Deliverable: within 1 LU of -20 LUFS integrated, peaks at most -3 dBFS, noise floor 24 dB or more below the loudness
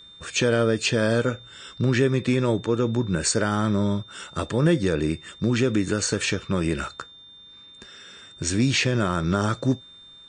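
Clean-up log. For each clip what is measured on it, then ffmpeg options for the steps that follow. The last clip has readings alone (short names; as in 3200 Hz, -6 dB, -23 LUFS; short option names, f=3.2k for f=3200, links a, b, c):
steady tone 3600 Hz; tone level -45 dBFS; loudness -23.5 LUFS; peak -9.0 dBFS; loudness target -20.0 LUFS
-> -af "bandreject=f=3.6k:w=30"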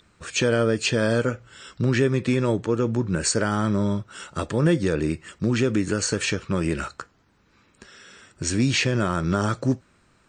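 steady tone none; loudness -23.5 LUFS; peak -9.0 dBFS; loudness target -20.0 LUFS
-> -af "volume=3.5dB"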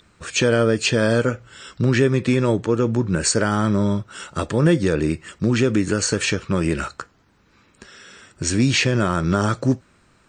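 loudness -20.0 LUFS; peak -5.5 dBFS; noise floor -58 dBFS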